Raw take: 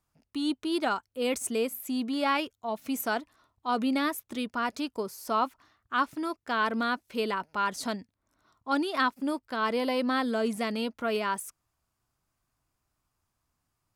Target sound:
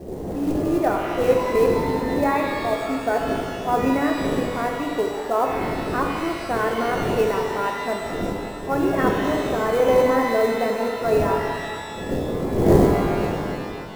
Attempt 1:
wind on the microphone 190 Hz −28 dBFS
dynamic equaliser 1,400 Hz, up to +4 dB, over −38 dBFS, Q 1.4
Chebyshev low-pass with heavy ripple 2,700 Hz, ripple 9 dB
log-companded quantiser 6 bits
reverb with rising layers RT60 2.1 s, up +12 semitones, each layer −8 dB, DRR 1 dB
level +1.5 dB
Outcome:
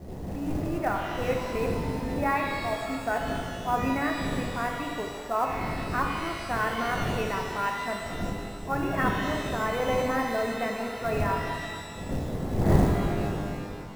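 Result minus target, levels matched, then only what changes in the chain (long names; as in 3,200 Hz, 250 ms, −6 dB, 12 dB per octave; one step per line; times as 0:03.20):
500 Hz band −3.5 dB
add after Chebyshev low-pass with heavy ripple: parametric band 410 Hz +13 dB 1.5 octaves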